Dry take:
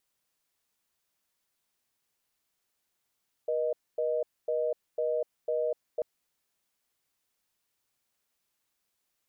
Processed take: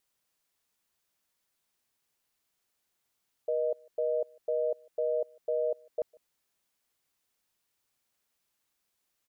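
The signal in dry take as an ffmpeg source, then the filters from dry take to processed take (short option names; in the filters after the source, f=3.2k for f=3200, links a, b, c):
-f lavfi -i "aevalsrc='0.0355*(sin(2*PI*480*t)+sin(2*PI*620*t))*clip(min(mod(t,0.5),0.25-mod(t,0.5))/0.005,0,1)':d=2.54:s=44100"
-filter_complex "[0:a]asplit=2[a][b];[b]adelay=151.6,volume=-27dB,highshelf=f=4k:g=-3.41[c];[a][c]amix=inputs=2:normalize=0"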